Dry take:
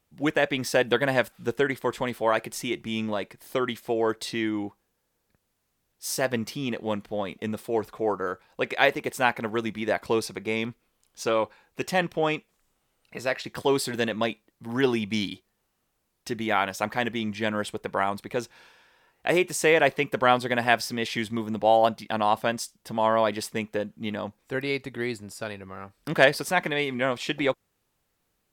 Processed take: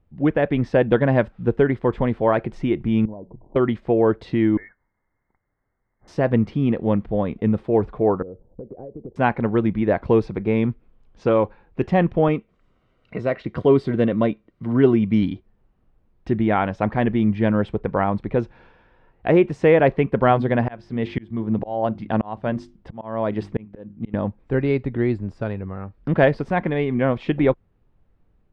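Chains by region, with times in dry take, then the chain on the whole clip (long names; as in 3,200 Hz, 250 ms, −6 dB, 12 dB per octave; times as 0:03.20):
0:03.05–0:03.56: Chebyshev low-pass filter 1,000 Hz, order 6 + mains-hum notches 60/120/180 Hz + downward compressor 3 to 1, threshold −45 dBFS
0:04.57–0:06.08: Butterworth high-pass 420 Hz 96 dB per octave + voice inversion scrambler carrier 2,600 Hz
0:08.22–0:09.16: Chebyshev low-pass filter 530 Hz, order 3 + downward compressor 8 to 1, threshold −41 dBFS
0:12.28–0:15.23: notch comb filter 840 Hz + one half of a high-frequency compander encoder only
0:20.28–0:24.14: mains-hum notches 50/100/150/200/250/300/350 Hz + volume swells 451 ms
whole clip: low-pass filter 3,000 Hz 12 dB per octave; spectral tilt −4 dB per octave; automatic gain control gain up to 3 dB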